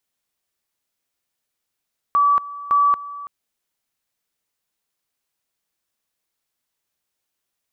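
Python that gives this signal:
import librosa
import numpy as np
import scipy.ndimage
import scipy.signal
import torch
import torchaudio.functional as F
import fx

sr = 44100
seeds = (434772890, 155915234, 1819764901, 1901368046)

y = fx.two_level_tone(sr, hz=1150.0, level_db=-12.5, drop_db=17.5, high_s=0.23, low_s=0.33, rounds=2)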